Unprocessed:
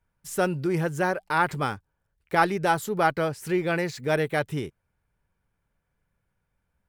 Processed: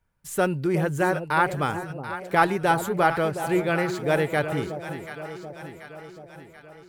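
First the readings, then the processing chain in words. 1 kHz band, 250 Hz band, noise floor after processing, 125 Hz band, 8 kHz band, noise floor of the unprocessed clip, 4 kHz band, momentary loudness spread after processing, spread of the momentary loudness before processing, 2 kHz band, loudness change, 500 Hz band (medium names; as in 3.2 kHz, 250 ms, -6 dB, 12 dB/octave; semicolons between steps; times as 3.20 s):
+2.0 dB, +2.5 dB, -50 dBFS, +2.0 dB, +1.0 dB, -78 dBFS, +1.0 dB, 18 LU, 8 LU, +2.0 dB, +1.5 dB, +2.5 dB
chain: echo whose repeats swap between lows and highs 367 ms, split 810 Hz, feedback 73%, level -8.5 dB; dynamic bell 5.3 kHz, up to -6 dB, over -57 dBFS, Q 3.5; trim +1.5 dB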